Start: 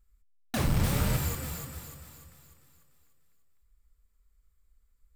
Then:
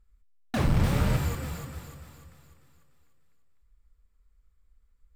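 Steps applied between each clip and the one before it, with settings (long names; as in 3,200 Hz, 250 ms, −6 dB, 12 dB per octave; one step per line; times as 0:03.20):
low-pass filter 2,800 Hz 6 dB per octave
level +3 dB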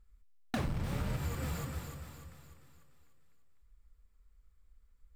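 downward compressor 10 to 1, threshold −31 dBFS, peak gain reduction 14 dB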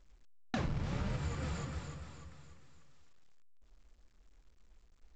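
flanger 1.9 Hz, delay 5 ms, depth 2.2 ms, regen +84%
level +3.5 dB
A-law companding 128 kbit/s 16,000 Hz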